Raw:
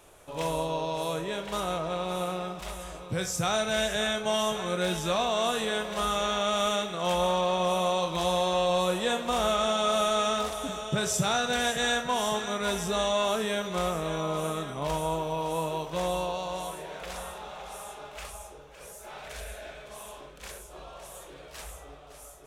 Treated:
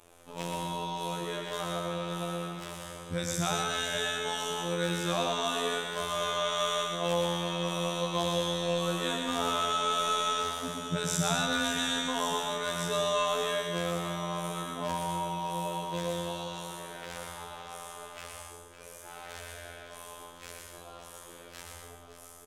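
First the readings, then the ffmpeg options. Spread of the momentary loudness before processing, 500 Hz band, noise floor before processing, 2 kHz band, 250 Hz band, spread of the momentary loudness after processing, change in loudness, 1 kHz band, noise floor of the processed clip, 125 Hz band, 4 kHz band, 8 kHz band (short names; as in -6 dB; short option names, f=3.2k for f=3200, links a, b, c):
18 LU, -5.0 dB, -48 dBFS, -2.0 dB, -2.0 dB, 17 LU, -3.0 dB, -3.0 dB, -50 dBFS, -0.5 dB, -1.0 dB, -1.5 dB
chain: -af "afftfilt=real='hypot(re,im)*cos(PI*b)':imag='0':win_size=2048:overlap=0.75,aecho=1:1:120|198|248.7|281.7|303.1:0.631|0.398|0.251|0.158|0.1"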